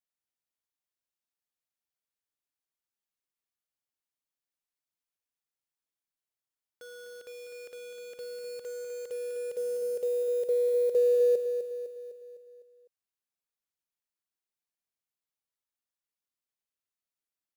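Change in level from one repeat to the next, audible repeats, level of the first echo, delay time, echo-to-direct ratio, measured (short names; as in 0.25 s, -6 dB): -6.0 dB, 5, -8.0 dB, 0.253 s, -6.5 dB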